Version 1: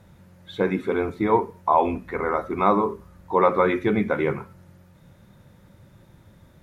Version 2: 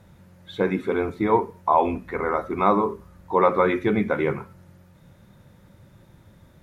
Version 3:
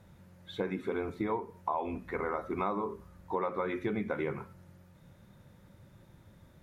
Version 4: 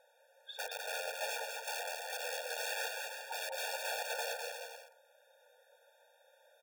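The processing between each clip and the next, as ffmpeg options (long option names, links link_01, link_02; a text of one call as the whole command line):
ffmpeg -i in.wav -af anull out.wav
ffmpeg -i in.wav -af "acompressor=threshold=-24dB:ratio=6,volume=-5.5dB" out.wav
ffmpeg -i in.wav -filter_complex "[0:a]aeval=exprs='(mod(35.5*val(0)+1,2)-1)/35.5':channel_layout=same,asplit=2[link_01][link_02];[link_02]aecho=0:1:200|340|438|506.6|554.6:0.631|0.398|0.251|0.158|0.1[link_03];[link_01][link_03]amix=inputs=2:normalize=0,afftfilt=real='re*eq(mod(floor(b*sr/1024/470),2),1)':imag='im*eq(mod(floor(b*sr/1024/470),2),1)':win_size=1024:overlap=0.75" out.wav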